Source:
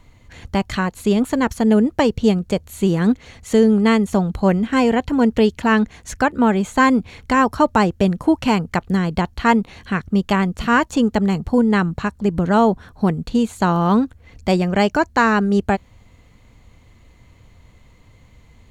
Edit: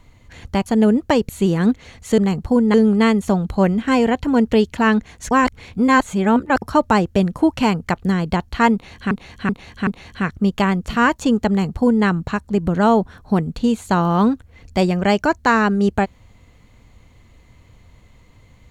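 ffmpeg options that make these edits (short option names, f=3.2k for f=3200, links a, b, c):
-filter_complex "[0:a]asplit=10[a][b][c][d][e][f][g][h][i][j];[a]atrim=end=0.662[k];[b]atrim=start=1.548:end=2.182[l];[c]atrim=start=2.698:end=3.592[m];[d]atrim=start=11.198:end=11.762[n];[e]atrim=start=3.588:end=6.162[o];[f]atrim=start=6.158:end=7.472,asetpts=PTS-STARTPTS,areverse[p];[g]atrim=start=7.468:end=9.962[q];[h]atrim=start=9.578:end=9.962[r];[i]atrim=start=9.578:end=9.962[s];[j]atrim=start=9.578[t];[k][l]acrossfade=d=0.004:c1=hsin:c2=hsin[u];[u][m]acrossfade=d=0.004:c1=hsin:c2=hsin[v];[v][n]acrossfade=d=0.004:c1=hsin:c2=hsin[w];[w][o]acrossfade=d=0.004:c1=hsin:c2=hsin[x];[x][p]acrossfade=d=0.004:c1=hsin:c2=hsin[y];[y][q]acrossfade=d=0.004:c1=hsin:c2=hsin[z];[z][r]acrossfade=d=0.004:c1=hsin:c2=hsin[aa];[aa][s]acrossfade=d=0.004:c1=hsin:c2=hsin[ab];[ab][t]acrossfade=d=0.004:c1=hsin:c2=hsin"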